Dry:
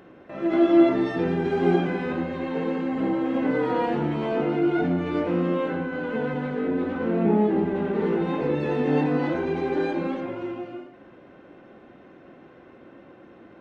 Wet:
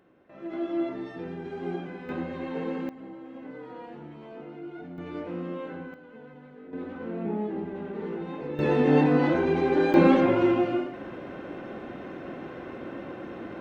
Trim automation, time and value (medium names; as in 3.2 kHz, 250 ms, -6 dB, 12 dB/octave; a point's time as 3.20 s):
-12.5 dB
from 2.09 s -5 dB
from 2.89 s -18 dB
from 4.98 s -10.5 dB
from 5.94 s -20 dB
from 6.73 s -10 dB
from 8.59 s +2 dB
from 9.94 s +10 dB